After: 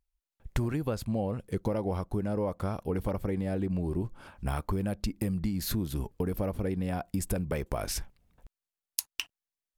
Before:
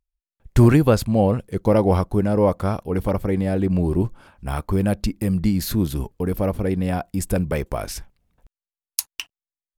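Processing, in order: compression 10:1, threshold -27 dBFS, peak gain reduction 19 dB

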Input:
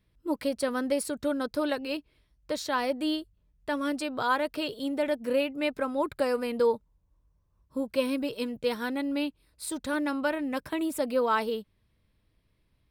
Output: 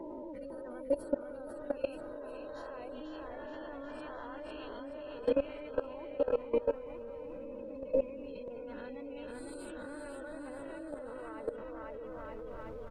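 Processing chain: reverse spectral sustain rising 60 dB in 1.39 s; compression 16:1, threshold -38 dBFS, peak gain reduction 19.5 dB; dynamic bell 480 Hz, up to +7 dB, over -55 dBFS, Q 1.1; flange 0.95 Hz, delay 5.7 ms, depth 6.4 ms, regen +55%; spectral gate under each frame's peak -25 dB strong; added noise brown -57 dBFS; bouncing-ball echo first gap 500 ms, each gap 0.85×, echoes 5; level held to a coarse grid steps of 18 dB; tone controls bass +1 dB, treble -7 dB; trim +10 dB

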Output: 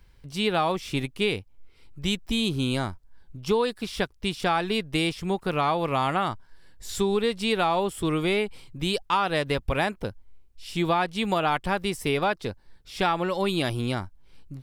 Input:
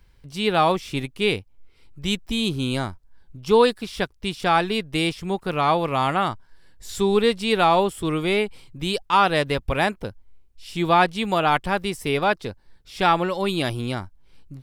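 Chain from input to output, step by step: compression 6:1, threshold -20 dBFS, peak gain reduction 9 dB

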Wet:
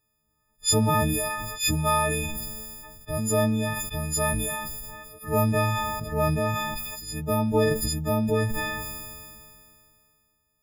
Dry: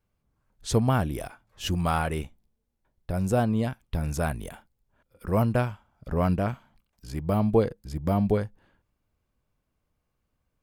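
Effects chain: partials quantised in pitch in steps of 6 st; decay stretcher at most 25 dB/s; trim -2 dB

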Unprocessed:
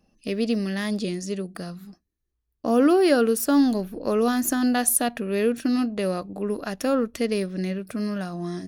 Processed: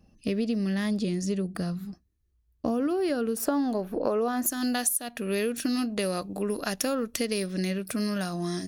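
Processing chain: peaking EQ 75 Hz +11 dB 2.6 oct, from 3.37 s 720 Hz, from 4.46 s 14 kHz; compression 10:1, threshold -24 dBFS, peak gain reduction 18.5 dB

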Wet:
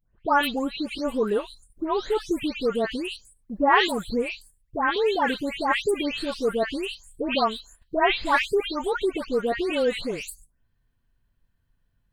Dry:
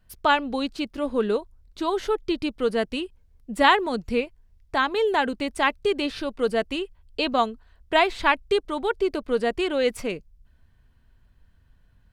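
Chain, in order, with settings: delay that grows with frequency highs late, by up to 333 ms; gate -50 dBFS, range -10 dB; treble shelf 10 kHz +8.5 dB

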